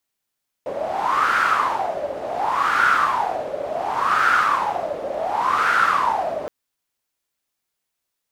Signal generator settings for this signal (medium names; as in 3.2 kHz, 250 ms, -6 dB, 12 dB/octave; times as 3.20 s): wind-like swept noise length 5.82 s, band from 570 Hz, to 1.4 kHz, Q 8.3, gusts 4, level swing 10 dB